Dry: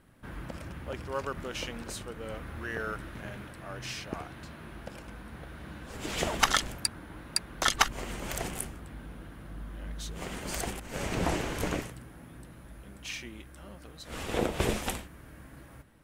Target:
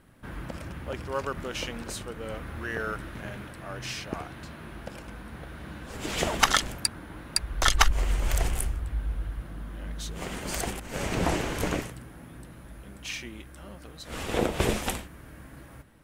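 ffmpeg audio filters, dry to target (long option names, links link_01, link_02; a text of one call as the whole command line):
ffmpeg -i in.wav -filter_complex "[0:a]asplit=3[link_01][link_02][link_03];[link_01]afade=type=out:start_time=7.36:duration=0.02[link_04];[link_02]asubboost=boost=7.5:cutoff=70,afade=type=in:start_time=7.36:duration=0.02,afade=type=out:start_time=9.41:duration=0.02[link_05];[link_03]afade=type=in:start_time=9.41:duration=0.02[link_06];[link_04][link_05][link_06]amix=inputs=3:normalize=0,volume=3dB" out.wav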